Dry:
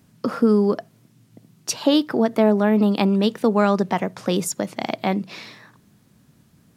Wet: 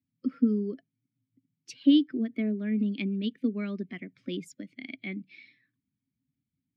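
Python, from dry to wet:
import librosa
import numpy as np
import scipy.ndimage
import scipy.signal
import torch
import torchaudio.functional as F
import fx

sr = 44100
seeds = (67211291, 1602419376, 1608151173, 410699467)

y = fx.bin_expand(x, sr, power=1.5)
y = fx.vowel_filter(y, sr, vowel='i')
y = y * 10.0 ** (4.0 / 20.0)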